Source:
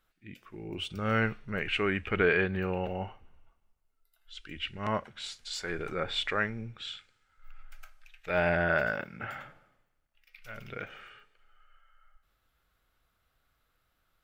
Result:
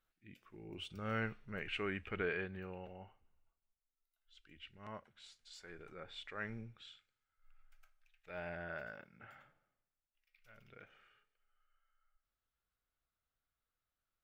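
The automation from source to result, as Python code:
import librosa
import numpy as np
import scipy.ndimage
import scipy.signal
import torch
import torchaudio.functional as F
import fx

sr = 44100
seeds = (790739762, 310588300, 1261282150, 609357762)

y = fx.gain(x, sr, db=fx.line((1.95, -10.5), (3.02, -18.0), (6.33, -18.0), (6.53, -7.0), (6.95, -18.0)))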